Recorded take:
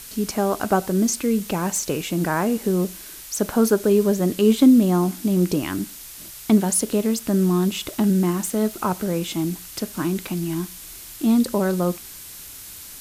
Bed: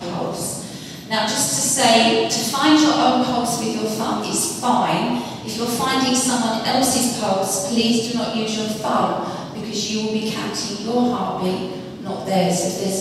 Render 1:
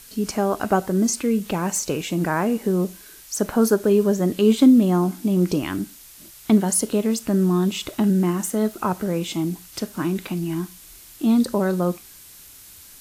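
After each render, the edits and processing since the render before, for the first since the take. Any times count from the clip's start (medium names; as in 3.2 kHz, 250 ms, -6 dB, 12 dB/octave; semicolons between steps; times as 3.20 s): noise print and reduce 6 dB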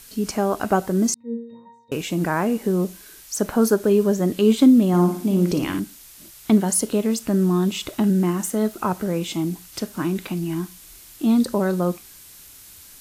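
1.14–1.92 s: pitch-class resonator A#, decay 0.75 s; 4.88–5.80 s: flutter echo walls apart 9.7 m, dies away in 0.47 s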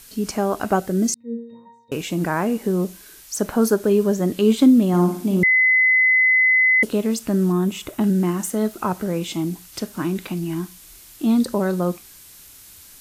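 0.80–1.39 s: peaking EQ 1 kHz -12.5 dB 0.44 oct; 5.43–6.83 s: bleep 2.03 kHz -12.5 dBFS; 7.52–8.01 s: peaking EQ 4.3 kHz -7.5 dB 1.1 oct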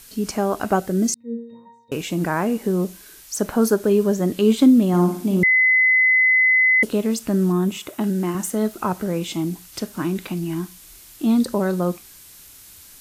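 7.77–8.35 s: high-pass 230 Hz 6 dB/octave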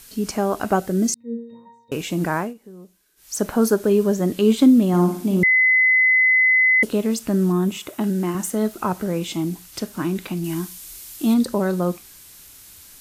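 2.36–3.34 s: dip -20.5 dB, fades 0.18 s; 10.44–11.34 s: treble shelf 3.6 kHz +7.5 dB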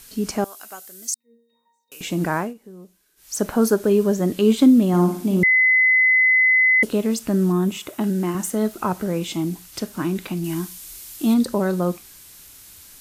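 0.44–2.01 s: differentiator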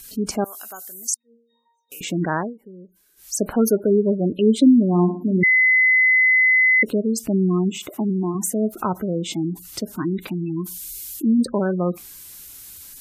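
spectral gate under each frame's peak -20 dB strong; treble shelf 9.1 kHz +7.5 dB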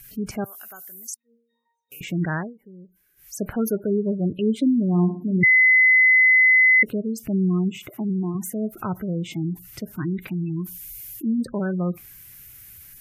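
graphic EQ 125/250/500/1000/2000/4000/8000 Hz +8/-7/-5/-8/+5/-10/-10 dB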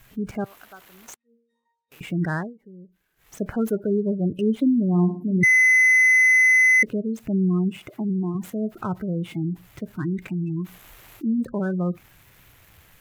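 median filter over 9 samples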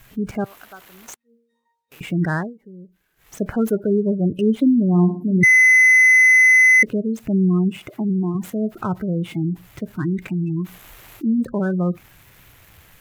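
trim +4 dB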